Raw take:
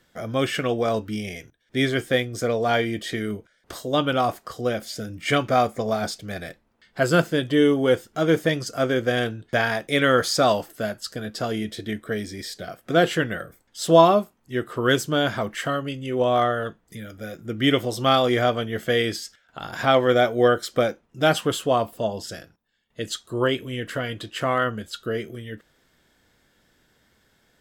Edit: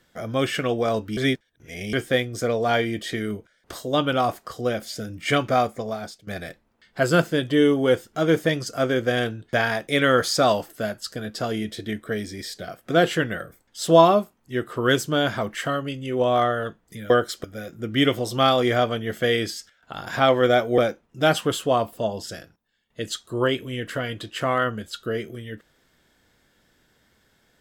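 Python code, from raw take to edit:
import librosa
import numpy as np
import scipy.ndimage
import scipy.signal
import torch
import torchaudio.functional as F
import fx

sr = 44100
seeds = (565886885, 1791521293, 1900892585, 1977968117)

y = fx.edit(x, sr, fx.reverse_span(start_s=1.17, length_s=0.76),
    fx.fade_out_to(start_s=5.49, length_s=0.78, floor_db=-16.0),
    fx.move(start_s=20.44, length_s=0.34, to_s=17.1), tone=tone)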